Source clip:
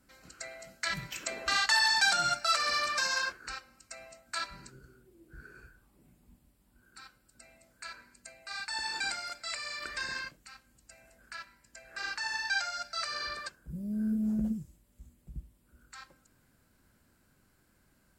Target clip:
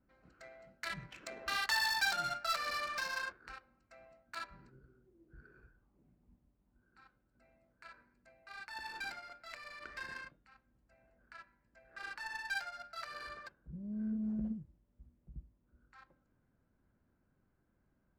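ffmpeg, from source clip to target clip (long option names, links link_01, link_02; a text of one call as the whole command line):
ffmpeg -i in.wav -af "bandreject=frequency=281.6:width_type=h:width=4,bandreject=frequency=563.2:width_type=h:width=4,bandreject=frequency=844.8:width_type=h:width=4,bandreject=frequency=1126.4:width_type=h:width=4,bandreject=frequency=1408:width_type=h:width=4,bandreject=frequency=1689.6:width_type=h:width=4,bandreject=frequency=1971.2:width_type=h:width=4,bandreject=frequency=2252.8:width_type=h:width=4,bandreject=frequency=2534.4:width_type=h:width=4,bandreject=frequency=2816:width_type=h:width=4,bandreject=frequency=3097.6:width_type=h:width=4,bandreject=frequency=3379.2:width_type=h:width=4,bandreject=frequency=3660.8:width_type=h:width=4,adynamicsmooth=sensitivity=4.5:basefreq=1500,volume=-6.5dB" out.wav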